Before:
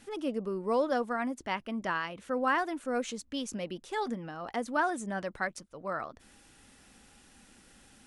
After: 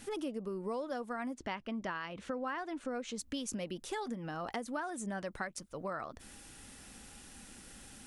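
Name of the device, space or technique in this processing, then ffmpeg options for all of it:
ASMR close-microphone chain: -filter_complex "[0:a]lowshelf=f=180:g=3.5,acompressor=threshold=-39dB:ratio=6,highshelf=f=6.7k:g=7,asettb=1/sr,asplit=3[a][b][c];[a]atrim=end=1.334[d];[b]atrim=start=1.33:end=3.18,asetpts=PTS-STARTPTS,afade=t=in:d=0.004:c=qsin,afade=t=out:st=1.846:d=0.004:c=qsin,lowpass=5.4k[e];[c]atrim=start=3.176[f];[d][e]acrossfade=d=0.004:c1=hsin:c2=qsin[g];[g][f]acrossfade=d=0.004:c1=qsin:c2=hsin,volume=3dB"

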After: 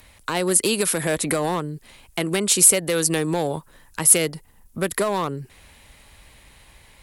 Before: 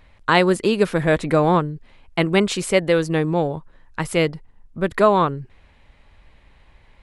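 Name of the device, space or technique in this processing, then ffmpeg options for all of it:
FM broadcast chain: -filter_complex "[0:a]highpass=f=41:p=1,dynaudnorm=f=620:g=5:m=11.5dB,acrossover=split=180|820[a][b][c];[a]acompressor=threshold=-39dB:ratio=4[d];[b]acompressor=threshold=-22dB:ratio=4[e];[c]acompressor=threshold=-29dB:ratio=4[f];[d][e][f]amix=inputs=3:normalize=0,aemphasis=mode=production:type=50fm,alimiter=limit=-14dB:level=0:latency=1:release=77,asoftclip=type=hard:threshold=-17.5dB,lowpass=f=15k:w=0.5412,lowpass=f=15k:w=1.3066,aemphasis=mode=production:type=50fm,volume=2.5dB"

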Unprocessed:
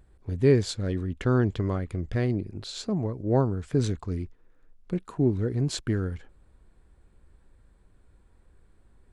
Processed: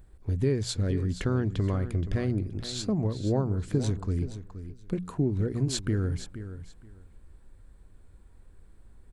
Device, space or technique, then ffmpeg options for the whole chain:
ASMR close-microphone chain: -af "lowshelf=f=170:g=6,acompressor=threshold=-22dB:ratio=5,highshelf=f=7.5k:g=7,bandreject=f=60:t=h:w=6,bandreject=f=120:t=h:w=6,bandreject=f=180:t=h:w=6,aecho=1:1:474|948:0.251|0.0477"

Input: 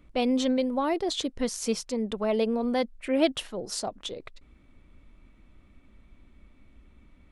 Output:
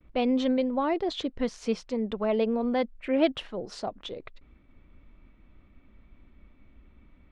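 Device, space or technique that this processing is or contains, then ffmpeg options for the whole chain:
hearing-loss simulation: -af "lowpass=3.2k,agate=range=-33dB:threshold=-54dB:ratio=3:detection=peak"

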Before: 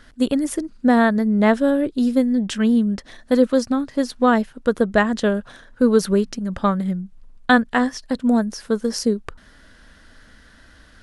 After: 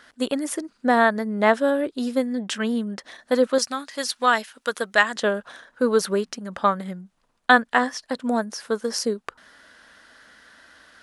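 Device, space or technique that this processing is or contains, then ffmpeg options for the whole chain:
filter by subtraction: -filter_complex "[0:a]asettb=1/sr,asplit=3[a][b][c];[a]atrim=end=3.584[d];[b]atrim=start=3.58:end=5.16,asetpts=PTS-STARTPTS,afade=t=in:d=0.004:c=qsin,afade=t=out:st=1.576:d=0.004:c=qsin,tiltshelf=f=1.3k:g=-8.5[e];[c]atrim=start=5.156[f];[d][e]acrossfade=d=0.004:c1=hsin:c2=qsin[g];[g][f]acrossfade=d=0.004:c1=qsin:c2=hsin,asplit=2[h][i];[i]lowpass=870,volume=-1[j];[h][j]amix=inputs=2:normalize=0"

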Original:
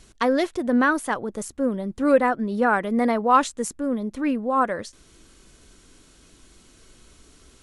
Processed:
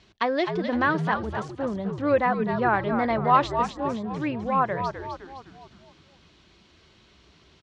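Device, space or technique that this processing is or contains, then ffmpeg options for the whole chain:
frequency-shifting delay pedal into a guitar cabinet: -filter_complex "[0:a]asplit=7[a][b][c][d][e][f][g];[b]adelay=256,afreqshift=-85,volume=-7dB[h];[c]adelay=512,afreqshift=-170,volume=-13.4dB[i];[d]adelay=768,afreqshift=-255,volume=-19.8dB[j];[e]adelay=1024,afreqshift=-340,volume=-26.1dB[k];[f]adelay=1280,afreqshift=-425,volume=-32.5dB[l];[g]adelay=1536,afreqshift=-510,volume=-38.9dB[m];[a][h][i][j][k][l][m]amix=inputs=7:normalize=0,highpass=88,equalizer=f=130:t=q:w=4:g=-4,equalizer=f=260:t=q:w=4:g=-9,equalizer=f=480:t=q:w=4:g=-6,equalizer=f=1.4k:t=q:w=4:g=-5,lowpass=f=4.5k:w=0.5412,lowpass=f=4.5k:w=1.3066"

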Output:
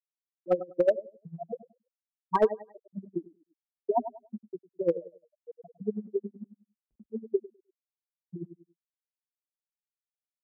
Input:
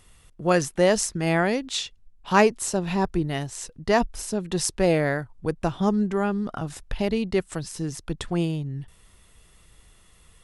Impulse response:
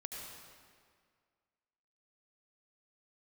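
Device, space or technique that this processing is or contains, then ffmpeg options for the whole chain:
helicopter radio: -af "afftfilt=real='re*gte(hypot(re,im),0.631)':imag='im*gte(hypot(re,im),0.631)':win_size=1024:overlap=0.75,highpass=320,lowpass=2.5k,aecho=1:1:103|206|309:0.188|0.0471|0.0118,aeval=exprs='val(0)*pow(10,-20*(0.5-0.5*cos(2*PI*11*n/s))/20)':c=same,asoftclip=type=hard:threshold=-18dB,volume=3.5dB"

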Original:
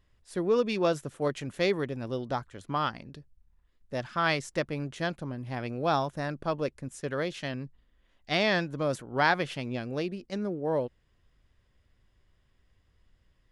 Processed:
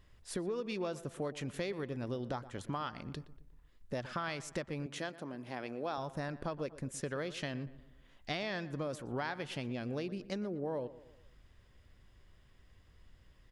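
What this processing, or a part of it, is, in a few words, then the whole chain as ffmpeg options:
serial compression, peaks first: -filter_complex "[0:a]acompressor=threshold=-36dB:ratio=5,acompressor=threshold=-47dB:ratio=1.5,asettb=1/sr,asplit=3[a][b][c];[a]atrim=end=4.864[d];[b]atrim=start=4.86:end=5.98,asetpts=PTS-STARTPTS,afade=t=in:d=0.004:c=qsin,afade=t=out:st=1.116:d=0.004:c=qsin,highpass=260[e];[c]atrim=start=5.976[f];[d][e]acrossfade=d=0.004:c1=hsin:c2=qsin[g];[g][f]acrossfade=d=0.004:c1=qsin:c2=hsin,asplit=2[h][i];[i]adelay=119,lowpass=f=2.5k:p=1,volume=-16dB,asplit=2[j][k];[k]adelay=119,lowpass=f=2.5k:p=1,volume=0.49,asplit=2[l][m];[m]adelay=119,lowpass=f=2.5k:p=1,volume=0.49,asplit=2[n][o];[o]adelay=119,lowpass=f=2.5k:p=1,volume=0.49[p];[h][j][l][n][p]amix=inputs=5:normalize=0,volume=5dB"

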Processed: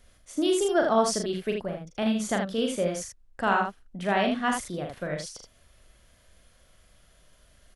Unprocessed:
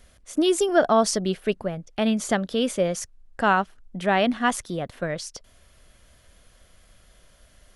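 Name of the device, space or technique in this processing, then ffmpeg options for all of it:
slapback doubling: -filter_complex "[0:a]asplit=3[a][b][c];[b]adelay=40,volume=-5dB[d];[c]adelay=78,volume=-5.5dB[e];[a][d][e]amix=inputs=3:normalize=0,volume=-5.5dB"

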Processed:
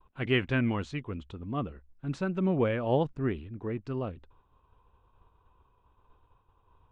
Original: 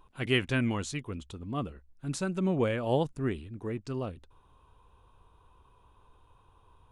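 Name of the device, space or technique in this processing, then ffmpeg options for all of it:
hearing-loss simulation: -af "lowpass=2.8k,agate=range=-33dB:threshold=-54dB:ratio=3:detection=peak,volume=1dB"

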